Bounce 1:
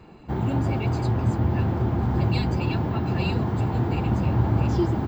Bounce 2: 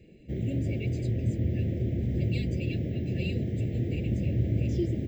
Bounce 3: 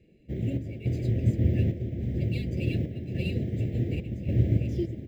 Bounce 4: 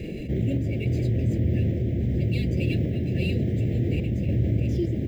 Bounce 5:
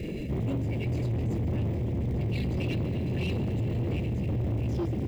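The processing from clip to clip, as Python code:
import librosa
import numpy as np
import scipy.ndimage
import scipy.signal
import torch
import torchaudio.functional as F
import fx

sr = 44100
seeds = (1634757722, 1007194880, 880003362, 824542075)

y1 = scipy.signal.sosfilt(scipy.signal.ellip(3, 1.0, 60, [570.0, 2000.0], 'bandstop', fs=sr, output='sos'), x)
y1 = fx.peak_eq(y1, sr, hz=4400.0, db=-8.5, octaves=0.24)
y1 = y1 * 10.0 ** (-5.0 / 20.0)
y2 = scipy.signal.medfilt(y1, 5)
y2 = fx.tremolo_random(y2, sr, seeds[0], hz=3.5, depth_pct=55)
y2 = fx.upward_expand(y2, sr, threshold_db=-41.0, expansion=1.5)
y2 = y2 * 10.0 ** (6.0 / 20.0)
y3 = fx.env_flatten(y2, sr, amount_pct=70)
y3 = y3 * 10.0 ** (-2.5 / 20.0)
y4 = fx.dmg_crackle(y3, sr, seeds[1], per_s=430.0, level_db=-48.0)
y4 = fx.echo_wet_highpass(y4, sr, ms=140, feedback_pct=82, hz=1700.0, wet_db=-15)
y4 = 10.0 ** (-25.0 / 20.0) * np.tanh(y4 / 10.0 ** (-25.0 / 20.0))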